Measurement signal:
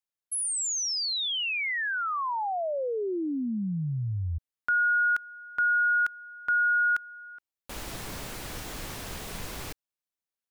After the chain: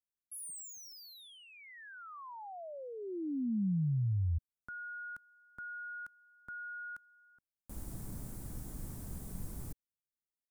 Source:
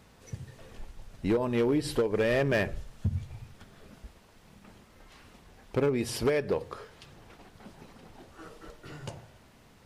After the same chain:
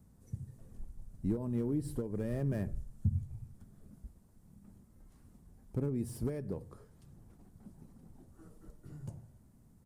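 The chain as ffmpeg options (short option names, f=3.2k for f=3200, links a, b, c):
-filter_complex "[0:a]acrossover=split=500|4000[a][b][c];[c]asoftclip=type=tanh:threshold=-37.5dB[d];[a][b][d]amix=inputs=3:normalize=0,firequalizer=gain_entry='entry(190,0);entry(450,-13);entry(2700,-26);entry(8600,-5)':delay=0.05:min_phase=1,volume=-1.5dB"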